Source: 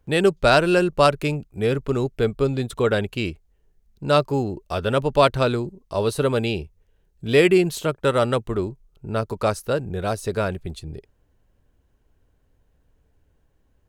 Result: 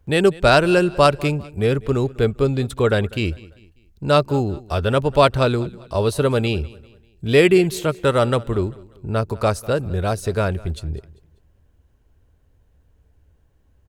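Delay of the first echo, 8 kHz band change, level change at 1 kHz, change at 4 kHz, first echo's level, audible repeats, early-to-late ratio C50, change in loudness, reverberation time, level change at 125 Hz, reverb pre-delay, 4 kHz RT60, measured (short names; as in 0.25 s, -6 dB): 0.197 s, +2.0 dB, +2.0 dB, +2.0 dB, -21.5 dB, 2, none, +2.5 dB, none, +4.5 dB, none, none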